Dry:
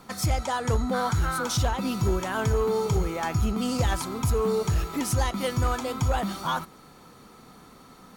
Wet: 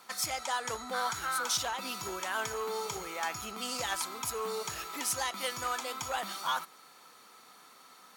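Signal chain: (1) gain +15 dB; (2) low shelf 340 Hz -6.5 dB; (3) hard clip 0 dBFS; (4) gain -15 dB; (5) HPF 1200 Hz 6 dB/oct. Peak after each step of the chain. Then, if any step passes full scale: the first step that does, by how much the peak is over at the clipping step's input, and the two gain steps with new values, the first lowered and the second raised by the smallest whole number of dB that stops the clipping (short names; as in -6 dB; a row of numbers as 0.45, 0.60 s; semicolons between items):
-2.0, -2.0, -2.0, -17.0, -17.5 dBFS; no overload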